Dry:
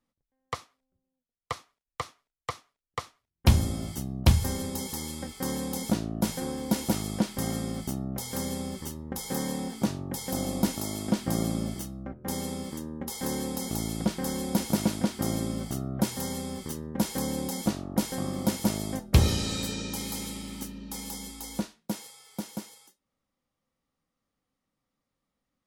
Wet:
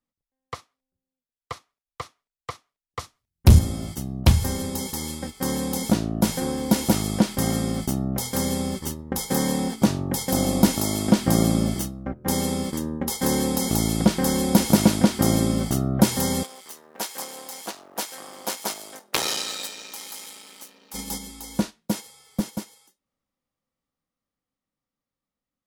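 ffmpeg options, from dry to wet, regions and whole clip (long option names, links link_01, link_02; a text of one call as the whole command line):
ffmpeg -i in.wav -filter_complex "[0:a]asettb=1/sr,asplit=3[link_01][link_02][link_03];[link_01]atrim=end=2.994[link_04];[link_02]atrim=start=2.99:end=3.59,asetpts=PTS-STARTPTS,afade=type=in:duration=0.004:curve=qsin,afade=type=out:start_time=0.596:duration=0.004:curve=qsin,bass=frequency=250:gain=9,treble=frequency=4000:gain=6,volume=8.5dB,asoftclip=hard,volume=-8.5dB[link_05];[link_03]atrim=start=3.586[link_06];[link_04][link_05]acrossfade=duration=0.004:curve1=hsin:curve2=qsin[link_07];[link_07][link_06]acrossfade=duration=0.004:curve1=qsin:curve2=hsin,asettb=1/sr,asplit=3[link_08][link_09][link_10];[link_08]atrim=end=16.434[link_11];[link_09]atrim=start=16.43:end=20.94,asetpts=PTS-STARTPTS,afade=type=in:duration=0.004:curve=qsin,afade=type=out:start_time=4.506:duration=0.004:curve=qsin,aeval=exprs='if(lt(val(0),0),0.251*val(0),val(0))':channel_layout=same,highpass=670,acrusher=bits=6:mode=log:mix=0:aa=0.000001[link_12];[link_10]atrim=start=20.936[link_13];[link_11][link_12]acrossfade=duration=0.004:curve1=hsin:curve2=qsin[link_14];[link_14][link_13]acrossfade=duration=0.004:curve1=qsin:curve2=hsin,asettb=1/sr,asplit=3[link_15][link_16][link_17];[link_15]atrim=end=22.074[link_18];[link_16]atrim=start=22.07:end=22.49,asetpts=PTS-STARTPTS,afade=type=in:duration=0.004:curve=qsin,afade=type=out:start_time=0.416:duration=0.004:curve=qsin,lowshelf=frequency=270:gain=9,aeval=exprs='clip(val(0),-1,0.0631)':channel_layout=same[link_19];[link_17]atrim=start=22.486[link_20];[link_18][link_19]acrossfade=duration=0.004:curve1=hsin:curve2=qsin[link_21];[link_21][link_20]acrossfade=duration=0.004:curve1=qsin:curve2=hsin,agate=range=-7dB:threshold=-37dB:ratio=16:detection=peak,dynaudnorm=framelen=840:gausssize=11:maxgain=11.5dB" out.wav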